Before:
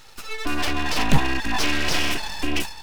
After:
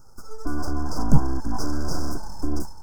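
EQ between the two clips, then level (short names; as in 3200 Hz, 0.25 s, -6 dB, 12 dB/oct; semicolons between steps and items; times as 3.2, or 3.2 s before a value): Chebyshev band-stop 1500–4900 Hz, order 5; low shelf 380 Hz +11 dB; -7.5 dB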